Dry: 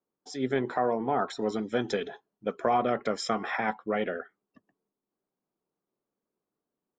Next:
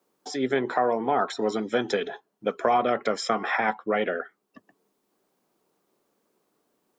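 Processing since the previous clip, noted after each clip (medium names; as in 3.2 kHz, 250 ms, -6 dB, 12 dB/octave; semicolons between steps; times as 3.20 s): bass shelf 180 Hz -11 dB; three bands compressed up and down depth 40%; trim +5 dB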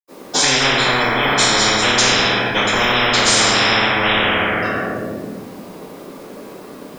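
reverberation RT60 1.3 s, pre-delay 77 ms; spectrum-flattening compressor 10:1; trim +3.5 dB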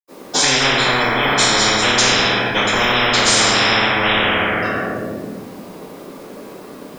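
no audible change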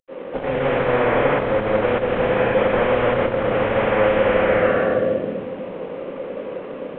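CVSD coder 16 kbps; peaking EQ 520 Hz +15 dB 0.28 oct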